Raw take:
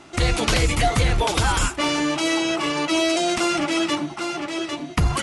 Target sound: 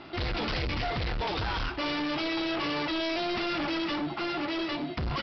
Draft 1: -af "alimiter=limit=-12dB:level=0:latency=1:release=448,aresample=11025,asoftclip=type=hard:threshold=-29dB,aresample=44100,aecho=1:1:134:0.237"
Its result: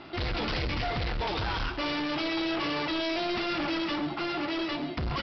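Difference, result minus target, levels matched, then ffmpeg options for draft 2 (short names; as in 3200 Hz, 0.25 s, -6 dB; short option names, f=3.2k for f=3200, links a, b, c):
echo-to-direct +11 dB
-af "alimiter=limit=-12dB:level=0:latency=1:release=448,aresample=11025,asoftclip=type=hard:threshold=-29dB,aresample=44100,aecho=1:1:134:0.0668"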